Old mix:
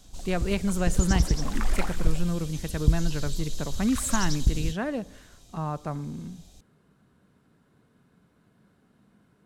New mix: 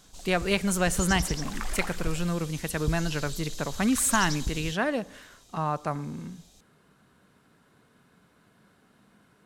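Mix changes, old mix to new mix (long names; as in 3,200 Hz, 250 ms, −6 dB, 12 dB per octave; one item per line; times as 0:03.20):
speech +7.5 dB
master: add low-shelf EQ 490 Hz −9.5 dB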